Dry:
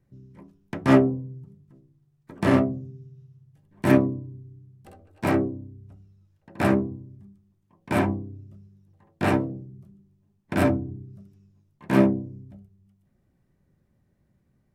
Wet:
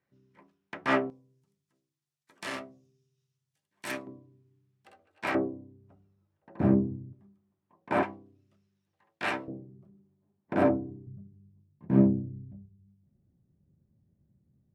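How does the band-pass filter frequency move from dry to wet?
band-pass filter, Q 0.67
1.9 kHz
from 1.10 s 6 kHz
from 4.07 s 2.3 kHz
from 5.35 s 770 Hz
from 6.60 s 170 Hz
from 7.13 s 860 Hz
from 8.03 s 2.7 kHz
from 9.48 s 570 Hz
from 11.07 s 130 Hz

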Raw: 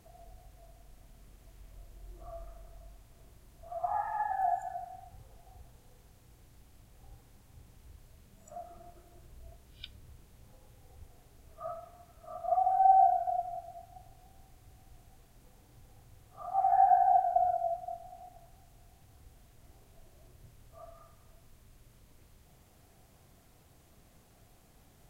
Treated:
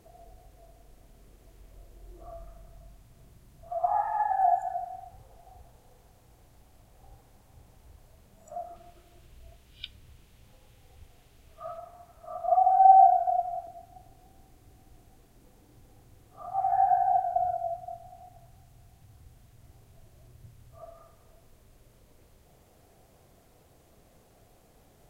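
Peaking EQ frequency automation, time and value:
peaking EQ +7 dB 1.2 oct
420 Hz
from 2.33 s 150 Hz
from 3.71 s 690 Hz
from 8.76 s 2.9 kHz
from 11.78 s 860 Hz
from 13.67 s 320 Hz
from 16.48 s 110 Hz
from 20.82 s 510 Hz

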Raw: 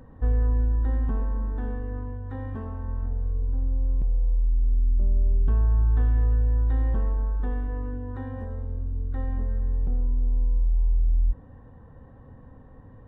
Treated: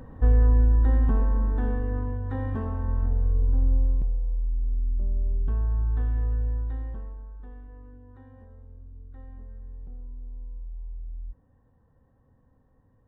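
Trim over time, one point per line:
3.75 s +4 dB
4.22 s -4.5 dB
6.48 s -4.5 dB
7.24 s -15.5 dB

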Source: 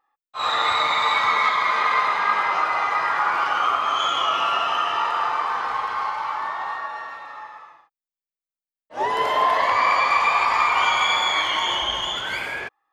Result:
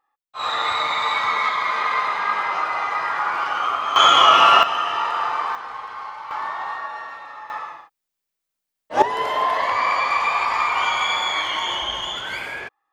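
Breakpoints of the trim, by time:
-1.5 dB
from 3.96 s +9.5 dB
from 4.63 s 0 dB
from 5.55 s -7.5 dB
from 6.31 s 0 dB
from 7.50 s +11.5 dB
from 9.02 s -1.5 dB

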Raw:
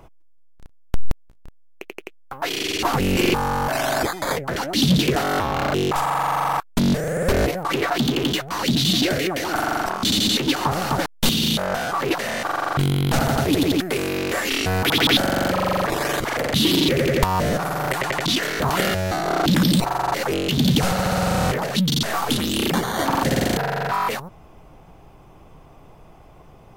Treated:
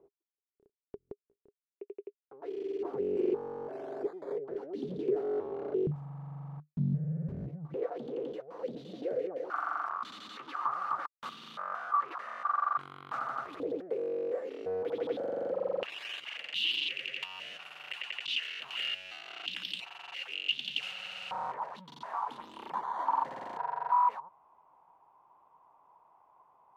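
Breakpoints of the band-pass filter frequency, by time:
band-pass filter, Q 10
410 Hz
from 5.87 s 150 Hz
from 7.74 s 490 Hz
from 9.50 s 1.2 kHz
from 13.60 s 490 Hz
from 15.83 s 2.8 kHz
from 21.31 s 970 Hz

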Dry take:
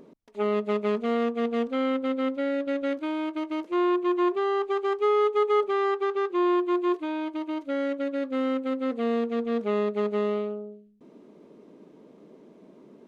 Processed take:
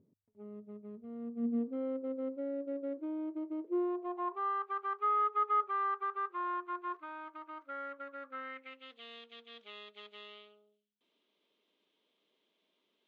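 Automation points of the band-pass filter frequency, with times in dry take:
band-pass filter, Q 4.4
1.01 s 100 Hz
1.83 s 400 Hz
3.71 s 400 Hz
4.54 s 1.3 kHz
8.28 s 1.3 kHz
8.90 s 3.3 kHz

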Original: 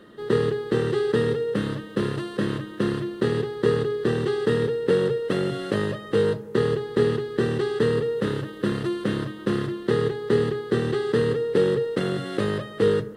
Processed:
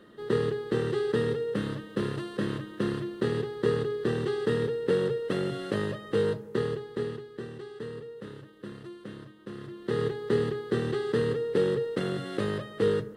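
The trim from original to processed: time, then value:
6.44 s -5 dB
7.52 s -17 dB
9.54 s -17 dB
10.01 s -5 dB

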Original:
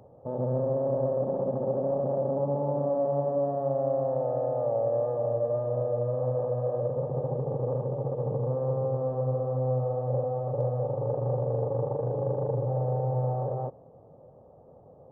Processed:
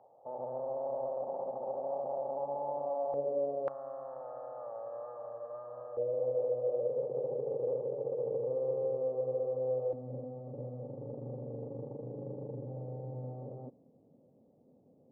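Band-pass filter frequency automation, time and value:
band-pass filter, Q 3.3
800 Hz
from 3.14 s 450 Hz
from 3.68 s 1.3 kHz
from 5.97 s 450 Hz
from 9.93 s 250 Hz

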